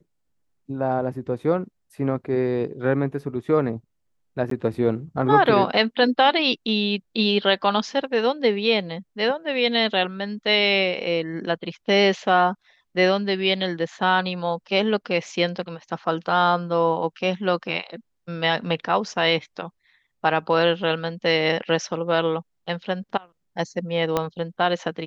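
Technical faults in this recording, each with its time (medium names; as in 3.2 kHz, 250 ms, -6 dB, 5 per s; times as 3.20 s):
4.50–4.51 s: dropout 13 ms
24.17 s: pop -8 dBFS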